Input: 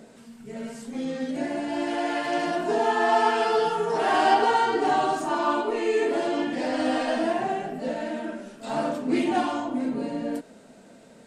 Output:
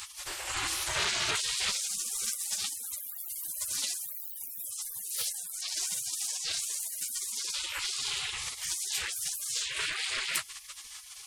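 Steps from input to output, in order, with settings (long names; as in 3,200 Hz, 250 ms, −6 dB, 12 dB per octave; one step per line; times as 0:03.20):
sine wavefolder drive 19 dB, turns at −8.5 dBFS
gate on every frequency bin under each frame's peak −30 dB weak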